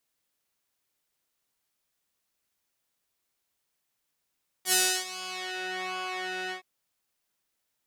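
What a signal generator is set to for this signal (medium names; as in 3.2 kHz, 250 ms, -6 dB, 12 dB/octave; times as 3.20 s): synth patch with pulse-width modulation F#4, oscillator 2 square, interval -12 st, oscillator 2 level -17 dB, filter bandpass, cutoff 2 kHz, Q 0.88, filter envelope 2.5 oct, filter decay 1.02 s, filter sustain 5%, attack 73 ms, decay 0.32 s, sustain -20 dB, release 0.11 s, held 1.86 s, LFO 1.3 Hz, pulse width 27%, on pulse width 8%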